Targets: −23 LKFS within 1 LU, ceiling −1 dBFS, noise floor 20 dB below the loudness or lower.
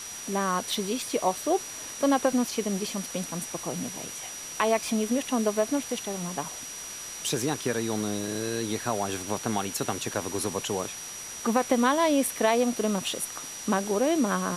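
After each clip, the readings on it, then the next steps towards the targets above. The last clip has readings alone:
interfering tone 5,800 Hz; level of the tone −39 dBFS; background noise floor −39 dBFS; target noise floor −48 dBFS; integrated loudness −28.0 LKFS; sample peak −9.5 dBFS; target loudness −23.0 LKFS
→ notch filter 5,800 Hz, Q 30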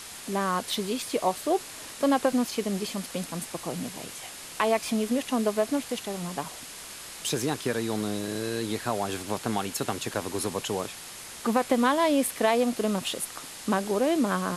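interfering tone none found; background noise floor −42 dBFS; target noise floor −49 dBFS
→ broadband denoise 7 dB, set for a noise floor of −42 dBFS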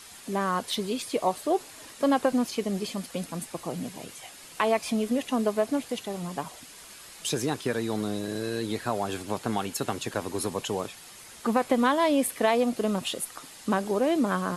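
background noise floor −47 dBFS; target noise floor −49 dBFS
→ broadband denoise 6 dB, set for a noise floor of −47 dBFS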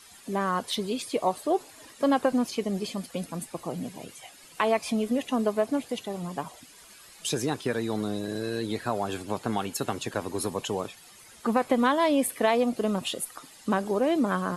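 background noise floor −51 dBFS; integrated loudness −28.5 LKFS; sample peak −10.0 dBFS; target loudness −23.0 LKFS
→ level +5.5 dB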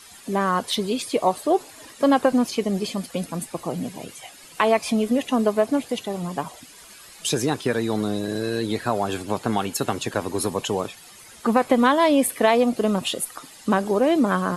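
integrated loudness −23.0 LKFS; sample peak −4.5 dBFS; background noise floor −46 dBFS

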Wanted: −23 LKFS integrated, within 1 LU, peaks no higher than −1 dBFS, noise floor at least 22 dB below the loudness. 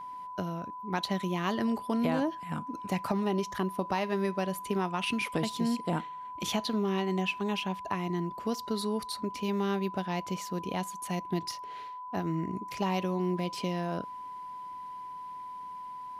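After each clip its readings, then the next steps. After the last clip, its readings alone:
interfering tone 1,000 Hz; level of the tone −39 dBFS; integrated loudness −33.0 LKFS; sample peak −17.0 dBFS; target loudness −23.0 LKFS
→ notch filter 1,000 Hz, Q 30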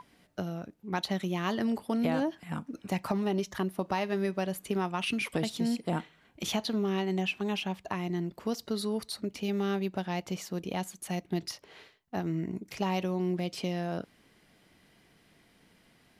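interfering tone none found; integrated loudness −33.0 LKFS; sample peak −16.5 dBFS; target loudness −23.0 LKFS
→ level +10 dB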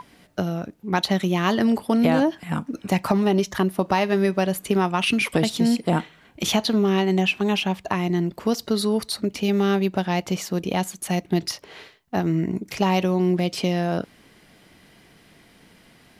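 integrated loudness −23.0 LKFS; sample peak −6.5 dBFS; background noise floor −54 dBFS

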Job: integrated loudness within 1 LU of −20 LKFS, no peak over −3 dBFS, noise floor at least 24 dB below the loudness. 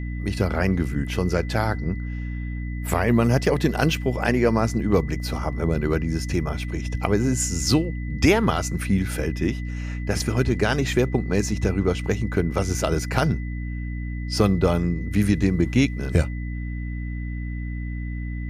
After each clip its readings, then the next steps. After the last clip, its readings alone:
mains hum 60 Hz; hum harmonics up to 300 Hz; level of the hum −27 dBFS; interfering tone 2,000 Hz; level of the tone −42 dBFS; integrated loudness −24.0 LKFS; sample peak −4.0 dBFS; target loudness −20.0 LKFS
→ mains-hum notches 60/120/180/240/300 Hz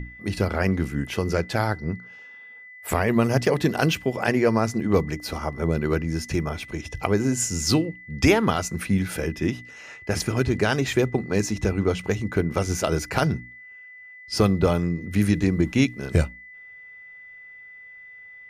mains hum none found; interfering tone 2,000 Hz; level of the tone −42 dBFS
→ notch filter 2,000 Hz, Q 30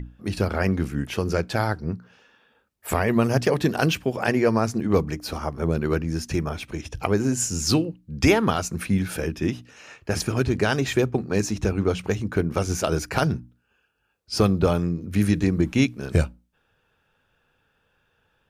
interfering tone none found; integrated loudness −24.0 LKFS; sample peak −5.0 dBFS; target loudness −20.0 LKFS
→ level +4 dB
brickwall limiter −3 dBFS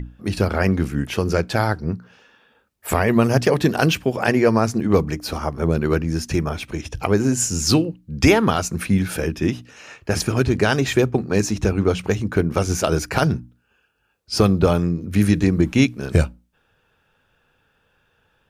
integrated loudness −20.0 LKFS; sample peak −3.0 dBFS; background noise floor −65 dBFS

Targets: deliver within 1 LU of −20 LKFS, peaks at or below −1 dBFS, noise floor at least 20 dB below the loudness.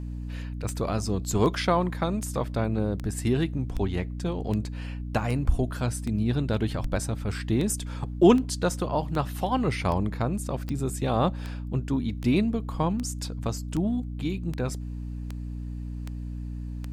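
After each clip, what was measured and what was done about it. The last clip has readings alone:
number of clicks 22; mains hum 60 Hz; hum harmonics up to 300 Hz; level of the hum −31 dBFS; integrated loudness −28.0 LKFS; sample peak −5.5 dBFS; target loudness −20.0 LKFS
→ click removal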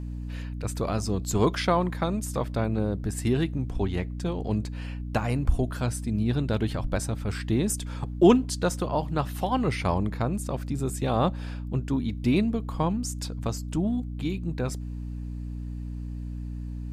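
number of clicks 0; mains hum 60 Hz; hum harmonics up to 300 Hz; level of the hum −31 dBFS
→ hum removal 60 Hz, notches 5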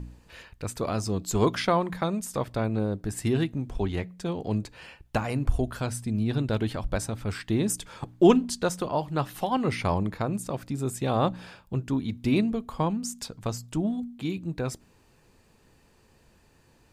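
mains hum none found; integrated loudness −28.5 LKFS; sample peak −5.5 dBFS; target loudness −20.0 LKFS
→ level +8.5 dB
brickwall limiter −1 dBFS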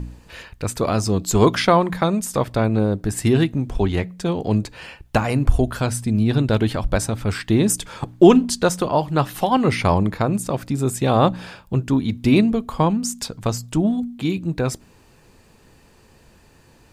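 integrated loudness −20.0 LKFS; sample peak −1.0 dBFS; background noise floor −53 dBFS

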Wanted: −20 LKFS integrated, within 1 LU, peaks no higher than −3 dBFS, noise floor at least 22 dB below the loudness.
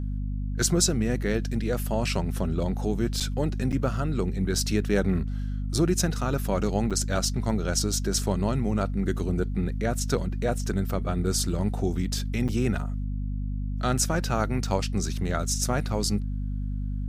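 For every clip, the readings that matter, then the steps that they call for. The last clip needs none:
number of dropouts 4; longest dropout 6.8 ms; mains hum 50 Hz; hum harmonics up to 250 Hz; level of the hum −27 dBFS; integrated loudness −27.0 LKFS; sample peak −9.0 dBFS; target loudness −20.0 LKFS
→ repair the gap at 0:03.20/0:03.72/0:06.90/0:12.48, 6.8 ms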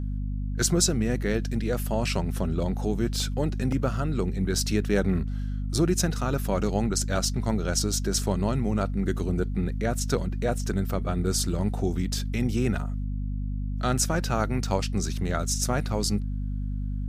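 number of dropouts 0; mains hum 50 Hz; hum harmonics up to 250 Hz; level of the hum −27 dBFS
→ mains-hum notches 50/100/150/200/250 Hz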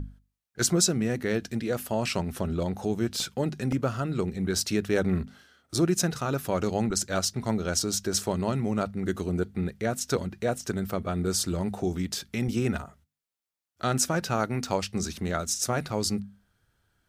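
mains hum none found; integrated loudness −28.5 LKFS; sample peak −10.0 dBFS; target loudness −20.0 LKFS
→ level +8.5 dB
brickwall limiter −3 dBFS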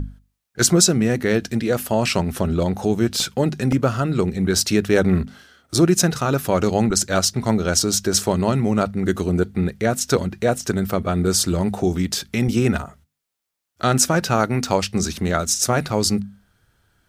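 integrated loudness −20.0 LKFS; sample peak −3.0 dBFS; background noise floor −77 dBFS

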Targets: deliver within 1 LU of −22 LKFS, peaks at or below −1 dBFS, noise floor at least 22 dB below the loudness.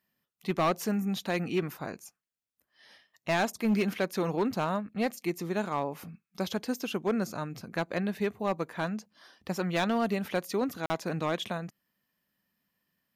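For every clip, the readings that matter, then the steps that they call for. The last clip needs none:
share of clipped samples 0.7%; peaks flattened at −21.0 dBFS; number of dropouts 1; longest dropout 40 ms; integrated loudness −31.5 LKFS; sample peak −21.0 dBFS; target loudness −22.0 LKFS
→ clipped peaks rebuilt −21 dBFS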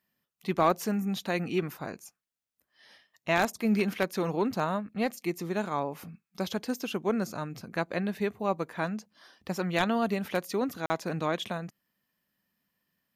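share of clipped samples 0.0%; number of dropouts 1; longest dropout 40 ms
→ repair the gap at 0:10.86, 40 ms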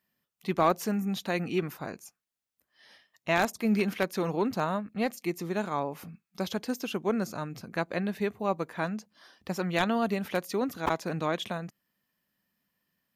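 number of dropouts 0; integrated loudness −31.0 LKFS; sample peak −12.0 dBFS; target loudness −22.0 LKFS
→ level +9 dB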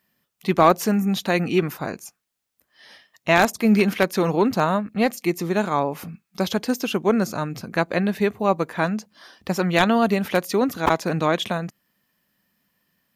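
integrated loudness −22.0 LKFS; sample peak −3.0 dBFS; background noise floor −77 dBFS

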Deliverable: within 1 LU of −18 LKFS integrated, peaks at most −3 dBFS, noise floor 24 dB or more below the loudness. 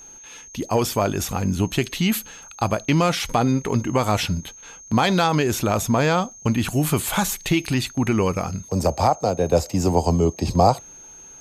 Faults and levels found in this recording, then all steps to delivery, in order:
crackle rate 31 per second; interfering tone 6,400 Hz; level of the tone −41 dBFS; integrated loudness −21.5 LKFS; sample peak −4.0 dBFS; target loudness −18.0 LKFS
→ click removal
notch filter 6,400 Hz, Q 30
level +3.5 dB
brickwall limiter −3 dBFS

